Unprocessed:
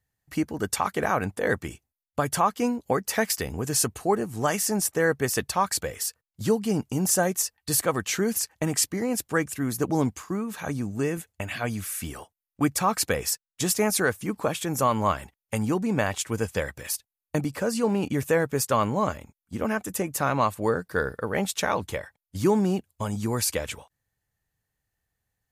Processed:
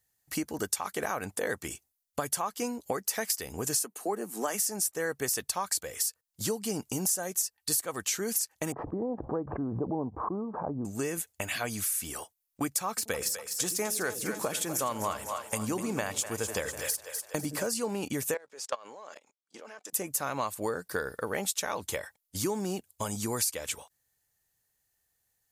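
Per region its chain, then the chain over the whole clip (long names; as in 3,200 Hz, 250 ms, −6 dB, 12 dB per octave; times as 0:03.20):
0:03.79–0:04.60: Butterworth high-pass 180 Hz 48 dB per octave + parametric band 5,000 Hz −5.5 dB 1.9 octaves
0:08.72–0:10.85: Butterworth low-pass 990 Hz + background raised ahead of every attack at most 56 dB per second
0:12.89–0:17.67: de-essing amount 45% + echo with a time of its own for lows and highs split 460 Hz, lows 82 ms, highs 248 ms, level −10.5 dB
0:18.34–0:19.93: gain on one half-wave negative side −3 dB + Chebyshev band-pass filter 480–5,200 Hz + output level in coarse steps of 23 dB
whole clip: bass and treble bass −7 dB, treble +10 dB; downward compressor 4 to 1, threshold −29 dBFS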